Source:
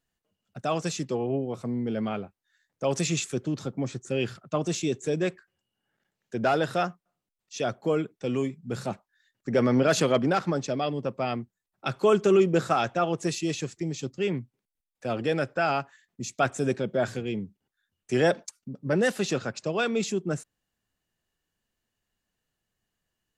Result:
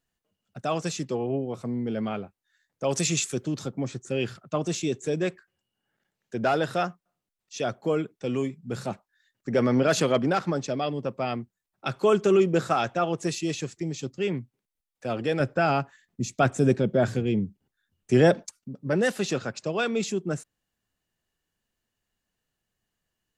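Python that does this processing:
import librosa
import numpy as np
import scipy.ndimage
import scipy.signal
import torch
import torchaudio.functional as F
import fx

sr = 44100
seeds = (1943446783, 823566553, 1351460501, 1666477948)

y = fx.high_shelf(x, sr, hz=4300.0, db=6.5, at=(2.89, 3.69))
y = fx.low_shelf(y, sr, hz=390.0, db=9.0, at=(15.4, 18.59))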